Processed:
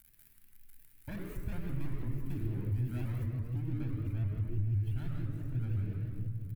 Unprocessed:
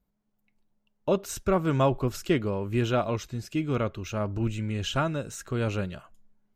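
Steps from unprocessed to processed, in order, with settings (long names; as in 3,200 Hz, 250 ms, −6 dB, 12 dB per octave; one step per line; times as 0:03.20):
running median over 25 samples
comb filter 6.7 ms, depth 61%
soft clipping −25 dBFS, distortion −9 dB
surface crackle 91 per second −40 dBFS
drawn EQ curve 100 Hz 0 dB, 160 Hz −14 dB, 230 Hz −7 dB, 360 Hz −13 dB, 560 Hz −26 dB, 1,100 Hz −20 dB, 2,000 Hz −11 dB, 3,200 Hz −18 dB, 6,400 Hz −20 dB, 12,000 Hz −3 dB
convolution reverb RT60 1.8 s, pre-delay 57 ms, DRR 0.5 dB
downward compressor 2 to 1, threshold −34 dBFS, peak gain reduction 8.5 dB
high-shelf EQ 5,800 Hz +6.5 dB, from 0:03.26 −2.5 dB
pitch modulation by a square or saw wave saw up 5.9 Hz, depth 160 cents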